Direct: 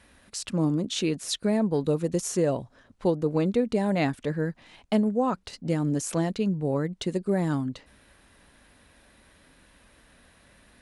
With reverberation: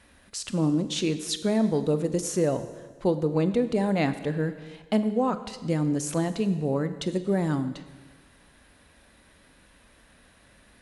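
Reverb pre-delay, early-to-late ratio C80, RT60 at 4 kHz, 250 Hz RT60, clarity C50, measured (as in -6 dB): 26 ms, 13.5 dB, 1.4 s, 1.4 s, 12.0 dB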